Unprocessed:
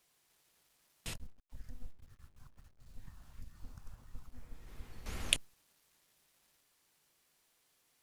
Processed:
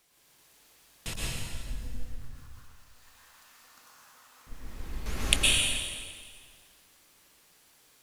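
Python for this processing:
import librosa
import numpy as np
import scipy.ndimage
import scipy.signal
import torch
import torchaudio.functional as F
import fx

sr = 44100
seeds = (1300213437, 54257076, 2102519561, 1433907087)

y = fx.highpass(x, sr, hz=910.0, slope=12, at=(2.31, 4.47))
y = fx.dmg_crackle(y, sr, seeds[0], per_s=330.0, level_db=-64.0)
y = fx.rev_plate(y, sr, seeds[1], rt60_s=1.8, hf_ratio=0.95, predelay_ms=100, drr_db=-5.5)
y = y * 10.0 ** (5.5 / 20.0)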